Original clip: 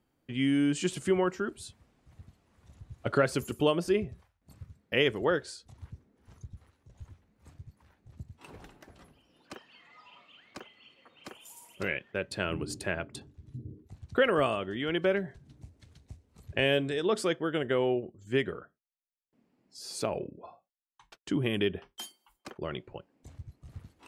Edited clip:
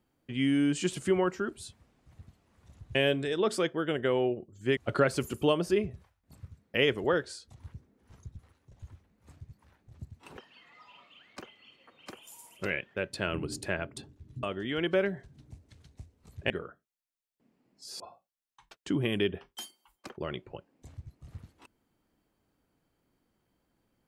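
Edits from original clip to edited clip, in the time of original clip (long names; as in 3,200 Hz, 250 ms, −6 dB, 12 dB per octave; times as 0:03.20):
0:08.55–0:09.55: remove
0:13.61–0:14.54: remove
0:16.61–0:18.43: move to 0:02.95
0:19.93–0:20.41: remove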